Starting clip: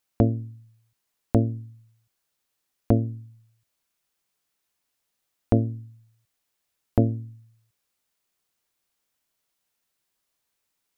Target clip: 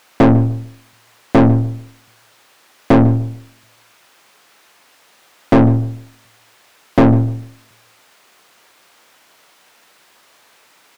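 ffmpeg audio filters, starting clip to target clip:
ffmpeg -i in.wav -filter_complex "[0:a]asplit=2[link_01][link_02];[link_02]highpass=frequency=720:poles=1,volume=40dB,asoftclip=type=tanh:threshold=-4.5dB[link_03];[link_01][link_03]amix=inputs=2:normalize=0,lowpass=frequency=1600:poles=1,volume=-6dB,asplit=2[link_04][link_05];[link_05]adelay=148,lowpass=frequency=910:poles=1,volume=-13.5dB,asplit=2[link_06][link_07];[link_07]adelay=148,lowpass=frequency=910:poles=1,volume=0.28,asplit=2[link_08][link_09];[link_09]adelay=148,lowpass=frequency=910:poles=1,volume=0.28[link_10];[link_04][link_06][link_08][link_10]amix=inputs=4:normalize=0,volume=3.5dB" out.wav

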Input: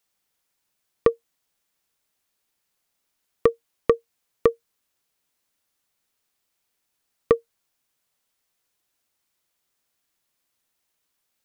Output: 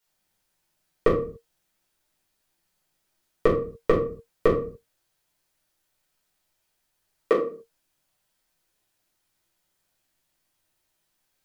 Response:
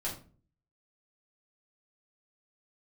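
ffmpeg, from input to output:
-filter_complex "[0:a]asettb=1/sr,asplit=3[link_01][link_02][link_03];[link_01]atrim=end=4.484[link_04];[link_02]atrim=start=4.48:end=7.34,asetpts=PTS-STARTPTS,afade=type=in:duration=0.004:curve=qsin,afade=type=out:start_time=2.856:duration=0.004:curve=qsin,acrossover=split=220[link_05][link_06];[link_05]adelay=50[link_07];[link_07][link_06]amix=inputs=2:normalize=0,atrim=end_sample=126126[link_08];[link_03]atrim=start=7.336[link_09];[link_04][link_08]acrossfade=duration=0.004:curve1=hsin:curve2=qsin[link_10];[link_10][link_09]acrossfade=duration=0.004:curve1=qsin:curve2=hsin[link_11];[1:a]atrim=start_sample=2205,afade=type=out:start_time=0.35:duration=0.01,atrim=end_sample=15876[link_12];[link_11][link_12]afir=irnorm=-1:irlink=0"

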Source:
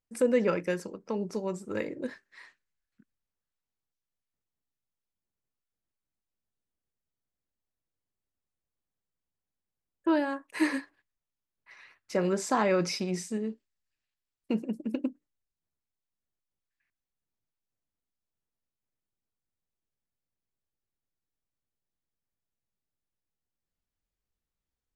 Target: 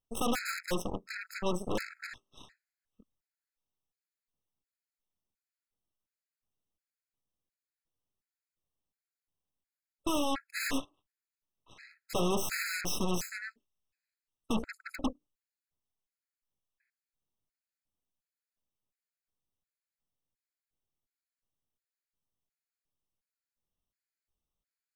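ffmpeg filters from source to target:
ffmpeg -i in.wav -af "aeval=exprs='0.0596*(abs(mod(val(0)/0.0596+3,4)-2)-1)':channel_layout=same,aeval=exprs='0.0631*(cos(1*acos(clip(val(0)/0.0631,-1,1)))-cos(1*PI/2))+0.0224*(cos(8*acos(clip(val(0)/0.0631,-1,1)))-cos(8*PI/2))':channel_layout=same,afftfilt=real='re*gt(sin(2*PI*1.4*pts/sr)*(1-2*mod(floor(b*sr/1024/1300),2)),0)':imag='im*gt(sin(2*PI*1.4*pts/sr)*(1-2*mod(floor(b*sr/1024/1300),2)),0)':win_size=1024:overlap=0.75" out.wav

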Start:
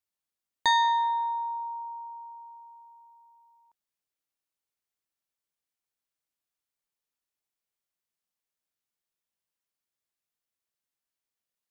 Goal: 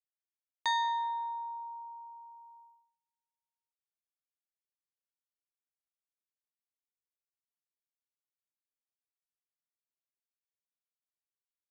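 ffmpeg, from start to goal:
ffmpeg -i in.wav -af "agate=range=-32dB:threshold=-50dB:ratio=16:detection=peak,volume=-7.5dB" out.wav

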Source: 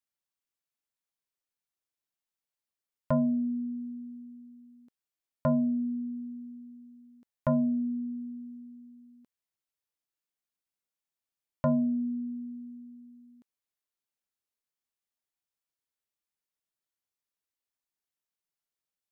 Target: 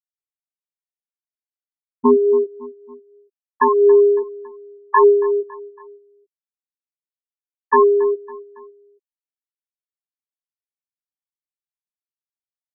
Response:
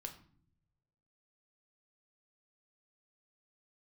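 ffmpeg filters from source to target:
-filter_complex "[0:a]highpass=100,asetrate=74167,aresample=44100,atempo=0.594604,lowpass=1400,aemphasis=mode=production:type=riaa,aecho=1:1:4.3:0.35,atempo=1.5,acrossover=split=560[link_01][link_02];[link_01]aeval=exprs='val(0)*(1-0.7/2+0.7/2*cos(2*PI*1.5*n/s))':channel_layout=same[link_03];[link_02]aeval=exprs='val(0)*(1-0.7/2-0.7/2*cos(2*PI*1.5*n/s))':channel_layout=same[link_04];[link_03][link_04]amix=inputs=2:normalize=0,flanger=delay=8.3:depth=9:regen=28:speed=0.37:shape=sinusoidal,afftfilt=real='re*gte(hypot(re,im),0.0398)':imag='im*gte(hypot(re,im),0.0398)':win_size=1024:overlap=0.75,asplit=2[link_05][link_06];[link_06]aecho=0:1:278|556|834:0.075|0.036|0.0173[link_07];[link_05][link_07]amix=inputs=2:normalize=0,alimiter=level_in=30.5dB:limit=-1dB:release=50:level=0:latency=1,volume=-3dB"

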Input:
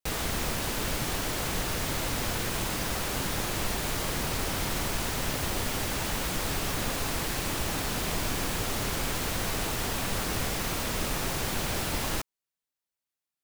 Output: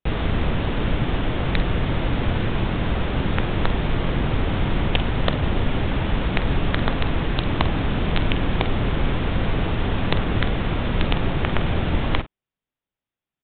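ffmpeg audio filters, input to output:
ffmpeg -i in.wav -filter_complex "[0:a]lowshelf=frequency=410:gain=10.5,aresample=8000,aeval=exprs='(mod(4.22*val(0)+1,2)-1)/4.22':channel_layout=same,aresample=44100,asplit=2[link_01][link_02];[link_02]adelay=47,volume=-12.5dB[link_03];[link_01][link_03]amix=inputs=2:normalize=0,volume=2.5dB" out.wav

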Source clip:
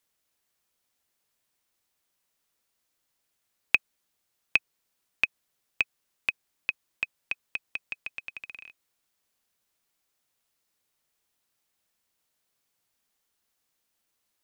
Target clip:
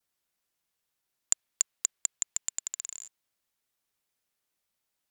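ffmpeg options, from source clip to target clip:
ffmpeg -i in.wav -af "adynamicequalizer=threshold=0.00501:dfrequency=850:dqfactor=0.76:tfrequency=850:tqfactor=0.76:attack=5:release=100:ratio=0.375:range=2.5:mode=boostabove:tftype=bell,asetrate=124803,aresample=44100" out.wav

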